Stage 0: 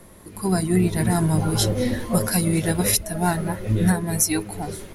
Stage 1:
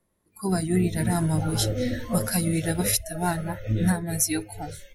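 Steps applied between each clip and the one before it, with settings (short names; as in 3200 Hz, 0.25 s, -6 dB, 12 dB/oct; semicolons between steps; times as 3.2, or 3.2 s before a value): spectral noise reduction 23 dB; gain -3.5 dB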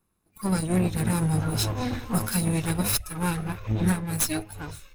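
minimum comb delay 0.78 ms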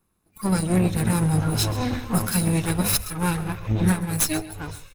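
echo 0.133 s -16.5 dB; gain +3 dB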